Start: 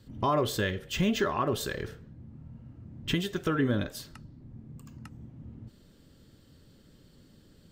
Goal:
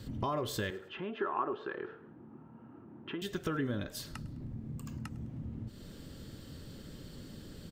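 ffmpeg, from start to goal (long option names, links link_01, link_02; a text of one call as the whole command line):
ffmpeg -i in.wav -filter_complex "[0:a]acompressor=threshold=-50dB:ratio=2.5,asettb=1/sr,asplit=3[link_01][link_02][link_03];[link_01]atrim=end=0.704[link_04];[link_02]atrim=start=0.7:end=3.22,asetpts=PTS-STARTPTS,afade=type=in:duration=0.004:curve=qsin,afade=type=out:start_time=2.516:duration=0.004:curve=qsin,highpass=330,equalizer=frequency=360:width_type=q:width=4:gain=6,equalizer=frequency=560:width_type=q:width=4:gain=-6,equalizer=frequency=890:width_type=q:width=4:gain=6,equalizer=frequency=1300:width_type=q:width=4:gain=5,equalizer=frequency=2100:width_type=q:width=4:gain=-8,lowpass=frequency=2400:width=0.5412,lowpass=frequency=2400:width=1.3066[link_05];[link_03]atrim=start=3.216[link_06];[link_04][link_05]acrossfade=duration=0.004:curve1=hsin:curve2=qsin[link_07];[link_07][link_06]acrossfade=duration=0.004:curve1=qsin:curve2=hsin,aecho=1:1:104|208|312:0.0841|0.0379|0.017,volume=9.5dB" out.wav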